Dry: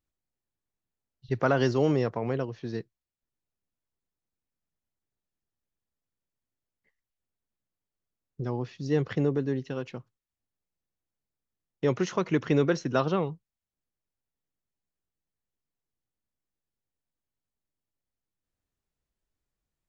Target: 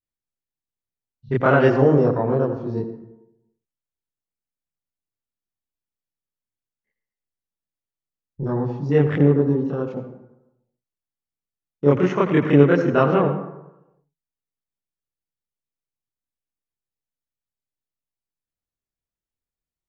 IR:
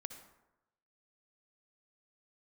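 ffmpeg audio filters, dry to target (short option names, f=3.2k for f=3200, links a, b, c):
-filter_complex "[0:a]afwtdn=0.0112,asplit=2[a][b];[1:a]atrim=start_sample=2205,adelay=28[c];[b][c]afir=irnorm=-1:irlink=0,volume=7.5dB[d];[a][d]amix=inputs=2:normalize=0,volume=3.5dB"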